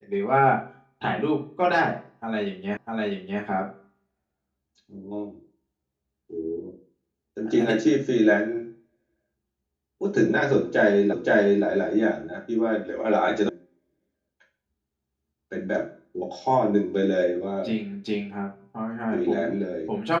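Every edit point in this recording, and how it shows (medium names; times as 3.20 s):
2.77 s: repeat of the last 0.65 s
11.13 s: repeat of the last 0.52 s
13.49 s: sound stops dead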